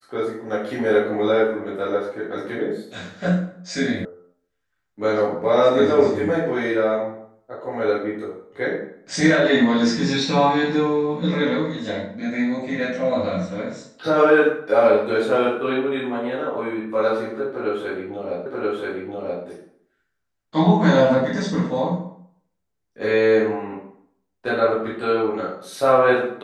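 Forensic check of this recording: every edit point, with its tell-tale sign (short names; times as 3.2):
4.05 sound cut off
18.46 repeat of the last 0.98 s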